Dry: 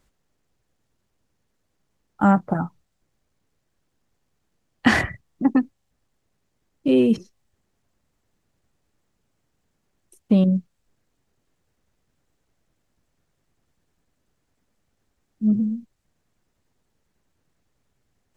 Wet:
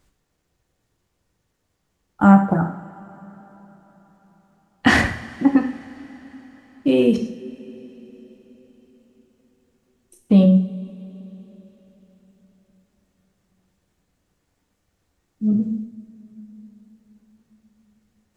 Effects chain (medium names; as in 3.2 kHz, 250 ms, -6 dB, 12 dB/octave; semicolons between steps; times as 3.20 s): two-slope reverb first 0.53 s, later 4.5 s, from -20 dB, DRR 3.5 dB; trim +2 dB